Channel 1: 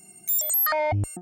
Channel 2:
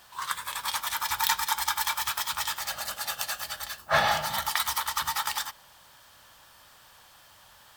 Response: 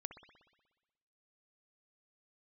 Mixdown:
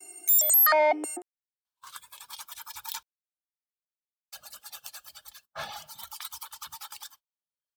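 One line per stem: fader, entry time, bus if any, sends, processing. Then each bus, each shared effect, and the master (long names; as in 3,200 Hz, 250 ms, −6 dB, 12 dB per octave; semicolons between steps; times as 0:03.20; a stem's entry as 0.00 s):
+2.5 dB, 0.00 s, send −20.5 dB, Butterworth high-pass 280 Hz 72 dB per octave
−15.0 dB, 1.65 s, muted 0:03.03–0:04.32, no send, notch filter 1,900 Hz, Q 5.2; reverb reduction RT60 1.3 s; high-shelf EQ 3,000 Hz +7.5 dB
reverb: on, RT60 1.2 s, pre-delay 60 ms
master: noise gate −54 dBFS, range −28 dB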